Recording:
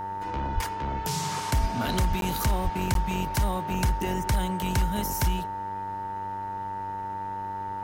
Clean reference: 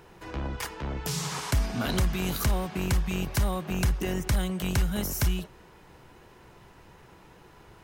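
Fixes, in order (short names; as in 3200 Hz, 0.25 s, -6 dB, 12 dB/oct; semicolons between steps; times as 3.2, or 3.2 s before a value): de-hum 98 Hz, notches 20; notch 900 Hz, Q 30; de-plosive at 0.54/1.6/2.08/2.63; interpolate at 2.21/2.94, 12 ms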